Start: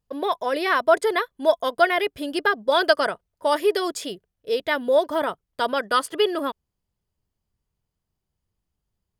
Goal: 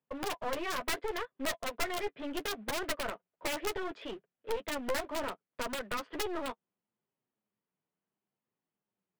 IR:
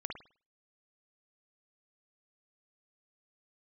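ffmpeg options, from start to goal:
-filter_complex "[0:a]highpass=f=180:w=0.5412,highpass=f=180:w=1.3066,acrossover=split=250|830[s0][s1][s2];[s1]acrusher=bits=2:mode=log:mix=0:aa=0.000001[s3];[s2]alimiter=limit=0.141:level=0:latency=1:release=27[s4];[s0][s3][s4]amix=inputs=3:normalize=0,acompressor=threshold=0.0355:ratio=2,lowpass=f=2800:w=0.5412,lowpass=f=2800:w=1.3066,aeval=exprs='(mod(10*val(0)+1,2)-1)/10':c=same,flanger=delay=7.3:depth=5.1:regen=-19:speed=0.7:shape=triangular,aeval=exprs='clip(val(0),-1,0.0075)':c=same"

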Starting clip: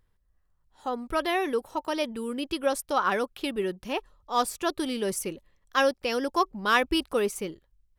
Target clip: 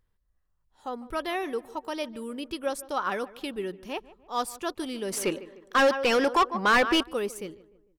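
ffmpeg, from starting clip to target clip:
-filter_complex "[0:a]asplit=2[s0][s1];[s1]adelay=150,lowpass=f=1700:p=1,volume=0.126,asplit=2[s2][s3];[s3]adelay=150,lowpass=f=1700:p=1,volume=0.47,asplit=2[s4][s5];[s5]adelay=150,lowpass=f=1700:p=1,volume=0.47,asplit=2[s6][s7];[s7]adelay=150,lowpass=f=1700:p=1,volume=0.47[s8];[s0][s2][s4][s6][s8]amix=inputs=5:normalize=0,asplit=3[s9][s10][s11];[s9]afade=t=out:st=5.12:d=0.02[s12];[s10]asplit=2[s13][s14];[s14]highpass=f=720:p=1,volume=15.8,asoftclip=type=tanh:threshold=0.376[s15];[s13][s15]amix=inputs=2:normalize=0,lowpass=f=2800:p=1,volume=0.501,afade=t=in:st=5.12:d=0.02,afade=t=out:st=7.02:d=0.02[s16];[s11]afade=t=in:st=7.02:d=0.02[s17];[s12][s16][s17]amix=inputs=3:normalize=0,volume=0.631"

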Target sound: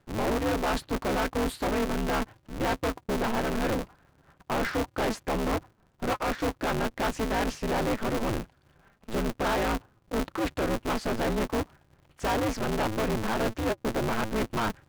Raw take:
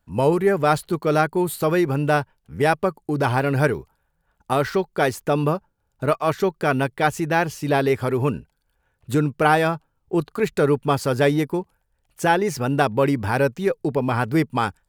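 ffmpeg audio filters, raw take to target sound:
-filter_complex "[0:a]aemphasis=mode=reproduction:type=riaa,areverse,acompressor=threshold=0.0794:ratio=6,areverse,asplit=2[s0][s1];[s1]highpass=f=720:p=1,volume=14.1,asoftclip=type=tanh:threshold=0.188[s2];[s0][s2]amix=inputs=2:normalize=0,lowpass=f=6600:p=1,volume=0.501,aeval=exprs='val(0)*sgn(sin(2*PI*110*n/s))':c=same,volume=0.501"

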